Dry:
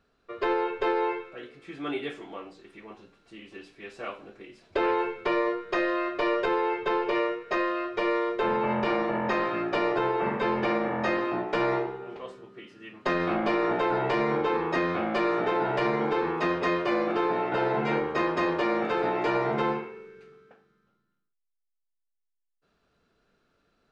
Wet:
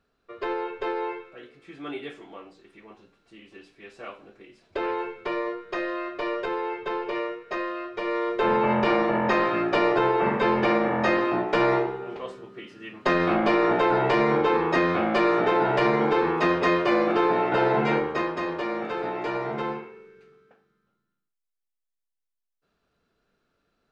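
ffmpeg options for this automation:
ffmpeg -i in.wav -af "volume=4.5dB,afade=type=in:start_time=8.04:duration=0.49:silence=0.421697,afade=type=out:start_time=17.82:duration=0.53:silence=0.421697" out.wav

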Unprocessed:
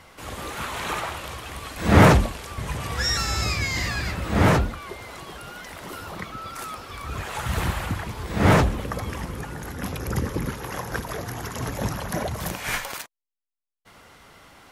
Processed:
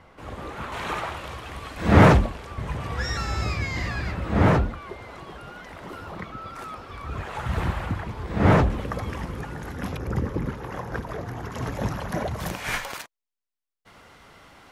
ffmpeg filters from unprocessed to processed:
ffmpeg -i in.wav -af "asetnsamples=nb_out_samples=441:pad=0,asendcmd='0.72 lowpass f 2900;2.19 lowpass f 1700;8.7 lowpass f 3300;9.97 lowpass f 1300;11.52 lowpass f 2800;12.39 lowpass f 5500',lowpass=frequency=1200:poles=1" out.wav

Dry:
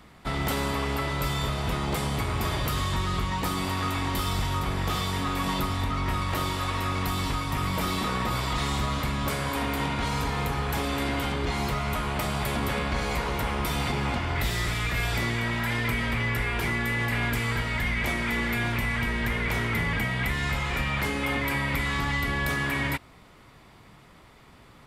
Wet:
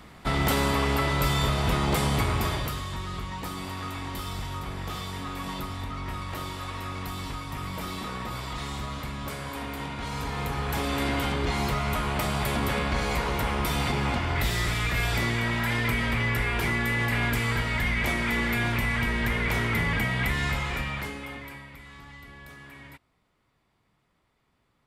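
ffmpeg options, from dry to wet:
ffmpeg -i in.wav -af "volume=11dB,afade=type=out:start_time=2.22:duration=0.59:silence=0.316228,afade=type=in:start_time=9.97:duration=1.08:silence=0.421697,afade=type=out:start_time=20.41:duration=0.81:silence=0.281838,afade=type=out:start_time=21.22:duration=0.49:silence=0.354813" out.wav

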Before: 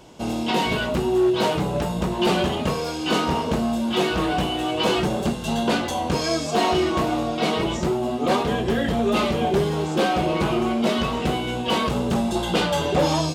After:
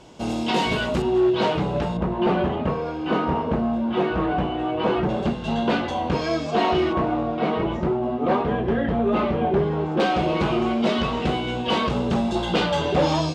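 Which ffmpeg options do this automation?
ffmpeg -i in.wav -af "asetnsamples=nb_out_samples=441:pad=0,asendcmd='1.02 lowpass f 3900;1.97 lowpass f 1700;5.09 lowpass f 3200;6.93 lowpass f 1800;10 lowpass f 4900',lowpass=8200" out.wav

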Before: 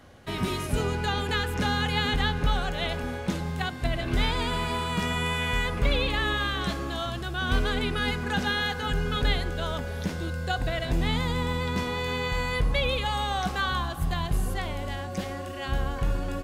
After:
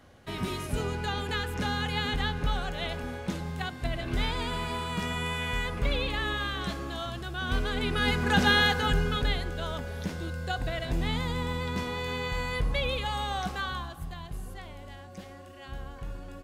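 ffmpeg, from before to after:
ffmpeg -i in.wav -af "volume=5.5dB,afade=type=in:start_time=7.71:duration=0.85:silence=0.334965,afade=type=out:start_time=8.56:duration=0.71:silence=0.354813,afade=type=out:start_time=13.37:duration=0.76:silence=0.375837" out.wav

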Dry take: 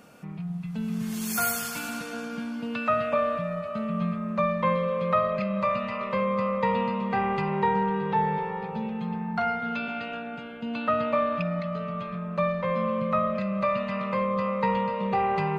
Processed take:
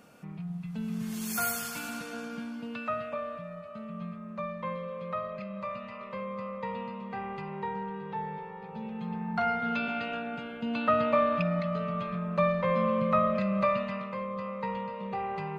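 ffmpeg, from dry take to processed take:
ffmpeg -i in.wav -af "volume=7dB,afade=type=out:start_time=2.28:duration=0.92:silence=0.446684,afade=type=in:start_time=8.59:duration=1.12:silence=0.281838,afade=type=out:start_time=13.61:duration=0.5:silence=0.354813" out.wav

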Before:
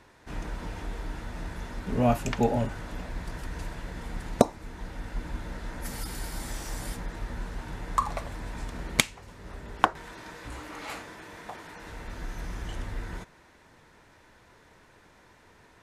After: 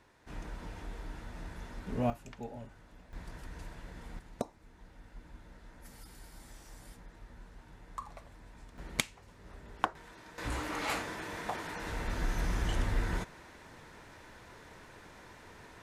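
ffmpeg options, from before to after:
ffmpeg -i in.wav -af "asetnsamples=nb_out_samples=441:pad=0,asendcmd='2.1 volume volume -19dB;3.13 volume volume -9.5dB;4.19 volume volume -16.5dB;8.78 volume volume -9dB;10.38 volume volume 4dB',volume=-7.5dB" out.wav

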